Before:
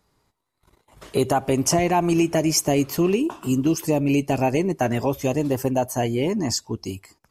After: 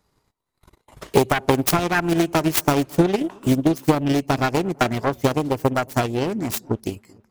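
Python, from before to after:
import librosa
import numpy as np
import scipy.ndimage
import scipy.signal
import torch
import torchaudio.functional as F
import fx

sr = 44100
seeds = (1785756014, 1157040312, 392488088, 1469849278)

y = fx.self_delay(x, sr, depth_ms=0.57)
y = fx.echo_wet_lowpass(y, sr, ms=224, feedback_pct=52, hz=1200.0, wet_db=-18.5)
y = fx.transient(y, sr, attack_db=10, sustain_db=-5)
y = y * librosa.db_to_amplitude(-1.5)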